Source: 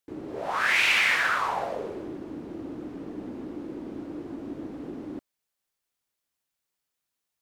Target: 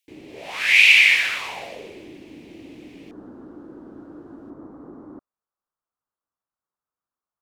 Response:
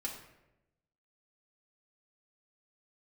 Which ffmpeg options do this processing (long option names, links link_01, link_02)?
-af "asetnsamples=nb_out_samples=441:pad=0,asendcmd='3.11 highshelf g -7;4.5 highshelf g -13.5',highshelf=frequency=1800:width_type=q:width=3:gain=9.5,volume=-4.5dB"